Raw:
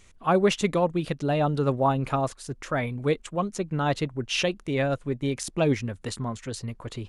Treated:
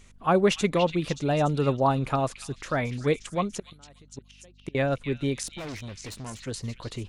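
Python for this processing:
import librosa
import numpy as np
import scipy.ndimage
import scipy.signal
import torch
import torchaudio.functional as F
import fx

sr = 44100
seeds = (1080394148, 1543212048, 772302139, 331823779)

p1 = fx.gate_flip(x, sr, shuts_db=-22.0, range_db=-30, at=(3.57, 4.75))
p2 = fx.tube_stage(p1, sr, drive_db=35.0, bias=0.7, at=(5.47, 6.42))
p3 = p2 + fx.echo_stepped(p2, sr, ms=289, hz=3100.0, octaves=0.7, feedback_pct=70, wet_db=-4.0, dry=0)
y = fx.add_hum(p3, sr, base_hz=50, snr_db=29)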